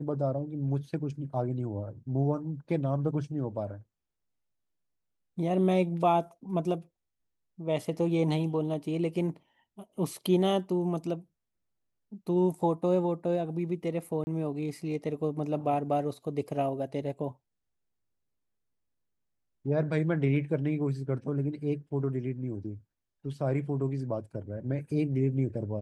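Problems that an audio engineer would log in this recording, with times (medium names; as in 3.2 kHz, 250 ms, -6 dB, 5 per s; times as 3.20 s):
14.24–14.27 s: dropout 30 ms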